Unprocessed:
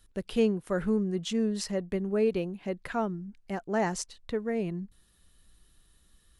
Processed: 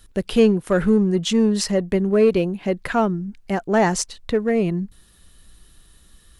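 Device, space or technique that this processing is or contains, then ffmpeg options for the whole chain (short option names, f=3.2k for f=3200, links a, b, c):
parallel distortion: -filter_complex "[0:a]asplit=2[a][b];[b]asoftclip=type=hard:threshold=-27dB,volume=-8dB[c];[a][c]amix=inputs=2:normalize=0,volume=8.5dB"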